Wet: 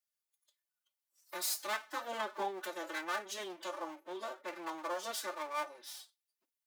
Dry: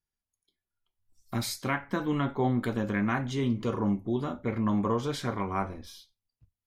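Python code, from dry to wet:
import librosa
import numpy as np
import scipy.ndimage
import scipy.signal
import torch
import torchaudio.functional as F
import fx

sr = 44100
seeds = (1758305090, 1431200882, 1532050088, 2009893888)

y = fx.lower_of_two(x, sr, delay_ms=5.2)
y = scipy.signal.sosfilt(scipy.signal.butter(2, 610.0, 'highpass', fs=sr, output='sos'), y)
y = fx.dynamic_eq(y, sr, hz=2300.0, q=0.78, threshold_db=-46.0, ratio=4.0, max_db=-6)
y = fx.pitch_keep_formants(y, sr, semitones=7.5)
y = fx.tilt_eq(y, sr, slope=2.0)
y = y * librosa.db_to_amplitude(-1.5)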